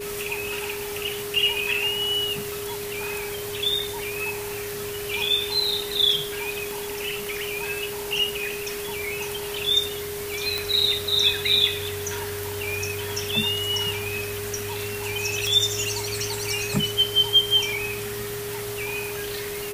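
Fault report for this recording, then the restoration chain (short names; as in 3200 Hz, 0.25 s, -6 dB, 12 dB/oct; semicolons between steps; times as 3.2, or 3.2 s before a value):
tone 410 Hz -31 dBFS
2.52 pop
6.71 pop
10.58 pop
15.47 pop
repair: de-click; notch 410 Hz, Q 30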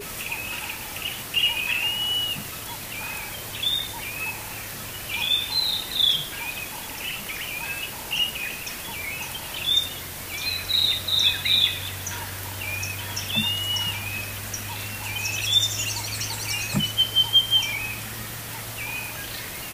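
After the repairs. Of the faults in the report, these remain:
none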